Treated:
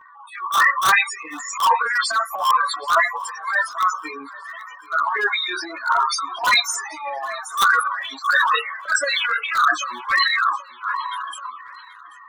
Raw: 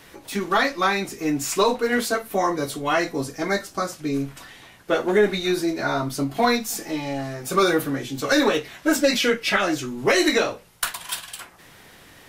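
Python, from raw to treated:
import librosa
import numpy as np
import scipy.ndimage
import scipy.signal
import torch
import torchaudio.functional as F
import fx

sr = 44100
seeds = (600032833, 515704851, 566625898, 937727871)

p1 = fx.octave_divider(x, sr, octaves=1, level_db=-2.0)
p2 = fx.highpass_res(p1, sr, hz=1100.0, q=4.0)
p3 = fx.spec_topn(p2, sr, count=8)
p4 = fx.tilt_eq(p3, sr, slope=3.5, at=(6.0, 6.62))
p5 = (np.mod(10.0 ** (8.5 / 20.0) * p4 + 1.0, 2.0) - 1.0) / 10.0 ** (8.5 / 20.0)
p6 = p4 + (p5 * librosa.db_to_amplitude(-4.0))
p7 = fx.chorus_voices(p6, sr, voices=2, hz=0.62, base_ms=13, depth_ms=3.3, mix_pct=50)
p8 = np.clip(p7, -10.0 ** (-15.0 / 20.0), 10.0 ** (-15.0 / 20.0))
p9 = fx.transient(p8, sr, attack_db=-12, sustain_db=9)
p10 = p9 + fx.echo_feedback(p9, sr, ms=784, feedback_pct=45, wet_db=-21.0, dry=0)
y = p10 * librosa.db_to_amplitude(4.5)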